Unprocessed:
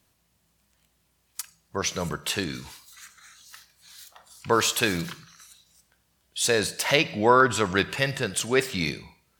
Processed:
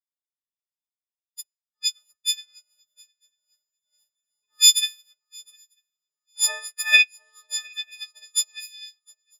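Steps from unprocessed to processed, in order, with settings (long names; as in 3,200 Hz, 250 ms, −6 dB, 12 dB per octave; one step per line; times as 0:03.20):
every partial snapped to a pitch grid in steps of 6 semitones
high-pass filter sweep 3,600 Hz → 73 Hz, 0:05.22–0:08.09
in parallel at −6 dB: slack as between gear wheels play −24.5 dBFS
on the sum: high-pass filter sweep 64 Hz → 3,800 Hz, 0:04.86–0:07.36
on a send: feedback echo with a long and a short gap by turns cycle 946 ms, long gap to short 3 to 1, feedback 35%, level −12 dB
on the sum: expander for the loud parts 2.5 to 1, over −31 dBFS
level −7 dB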